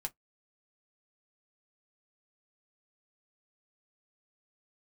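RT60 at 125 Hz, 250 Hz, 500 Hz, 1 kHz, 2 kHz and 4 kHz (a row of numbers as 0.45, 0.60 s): 0.10, 0.15, 0.15, 0.10, 0.10, 0.10 s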